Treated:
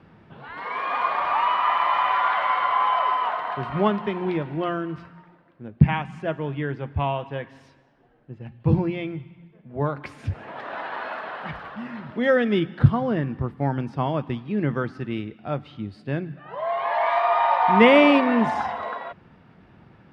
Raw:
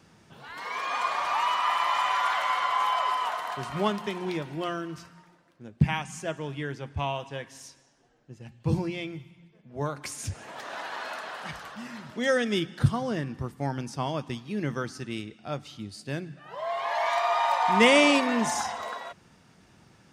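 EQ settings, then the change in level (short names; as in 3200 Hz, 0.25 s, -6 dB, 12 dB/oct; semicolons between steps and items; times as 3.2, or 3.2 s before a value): air absorption 450 m; +7.0 dB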